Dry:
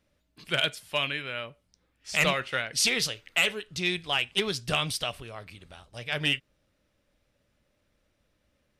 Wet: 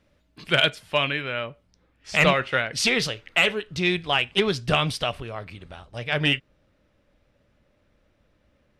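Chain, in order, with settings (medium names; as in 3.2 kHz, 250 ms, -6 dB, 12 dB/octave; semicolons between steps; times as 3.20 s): low-pass 3.7 kHz 6 dB/octave, from 0.70 s 2.1 kHz; trim +8 dB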